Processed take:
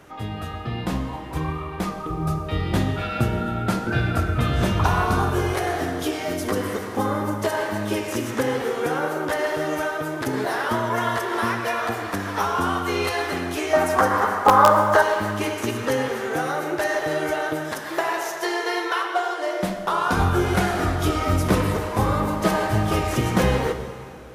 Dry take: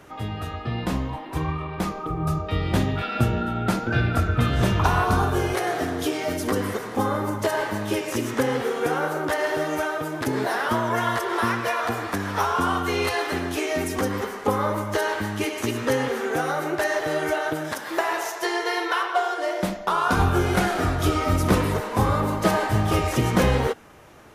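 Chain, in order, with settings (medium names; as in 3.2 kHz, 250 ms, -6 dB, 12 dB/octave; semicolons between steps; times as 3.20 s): 13.73–15.02 s: high-order bell 990 Hz +13 dB; in parallel at -6 dB: integer overflow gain 2 dB; on the sum: plate-style reverb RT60 2.7 s, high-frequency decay 0.85×, DRR 8.5 dB; trim -4 dB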